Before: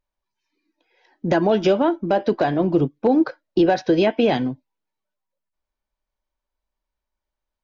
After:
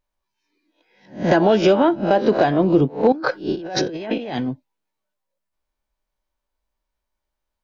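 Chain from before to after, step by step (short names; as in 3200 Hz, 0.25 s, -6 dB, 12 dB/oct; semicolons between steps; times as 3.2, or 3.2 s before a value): spectral swells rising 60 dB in 0.33 s; 3.12–4.49 negative-ratio compressor -28 dBFS, ratio -1; gain +2 dB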